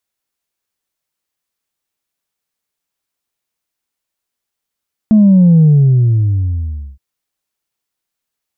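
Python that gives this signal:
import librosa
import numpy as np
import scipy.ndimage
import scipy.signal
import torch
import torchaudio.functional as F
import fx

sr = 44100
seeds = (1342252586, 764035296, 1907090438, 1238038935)

y = fx.sub_drop(sr, level_db=-4.5, start_hz=220.0, length_s=1.87, drive_db=0.5, fade_s=1.36, end_hz=65.0)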